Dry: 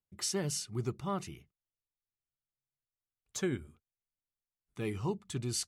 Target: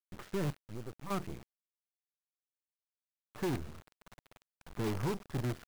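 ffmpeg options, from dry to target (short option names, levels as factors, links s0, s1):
-filter_complex "[0:a]asettb=1/sr,asplit=3[s0][s1][s2];[s0]atrim=end=3.584[s3];[s1]atrim=start=3.58:end=4.96,asetpts=PTS-STARTPTS,afade=t=in:d=0.004:c=qsin,afade=t=out:st=1.376:d=0.004:c=qsin,aeval=exprs='val(0)+0.5*0.00251*sgn(val(0))':c=same[s4];[s2]atrim=start=4.956[s5];[s3][s4]acrossfade=d=0.004:c1=hsin:c2=qsin[s6];[s6][s5]acrossfade=d=0.004:c1=qsin:c2=hsin,lowpass=f=1600:w=0.5412,lowpass=f=1600:w=1.3066,asplit=3[s7][s8][s9];[s7]afade=t=out:st=0.51:d=0.02[s10];[s8]acompressor=threshold=0.00251:ratio=2.5,afade=t=in:st=0.51:d=0.02,afade=t=out:st=1.1:d=0.02[s11];[s9]afade=t=in:st=1.1:d=0.02[s12];[s10][s11][s12]amix=inputs=3:normalize=0,acrusher=bits=7:dc=4:mix=0:aa=0.000001,asoftclip=type=tanh:threshold=0.0112,volume=2.82"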